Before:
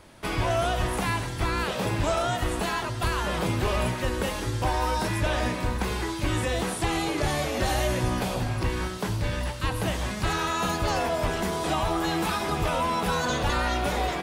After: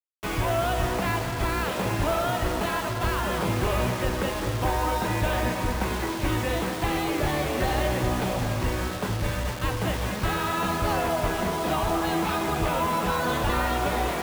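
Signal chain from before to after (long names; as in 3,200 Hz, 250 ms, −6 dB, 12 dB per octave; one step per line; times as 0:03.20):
low-pass filter 3,500 Hz 12 dB per octave
bit-depth reduction 6 bits, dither none
on a send: tape delay 224 ms, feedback 85%, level −8 dB, low-pass 2,600 Hz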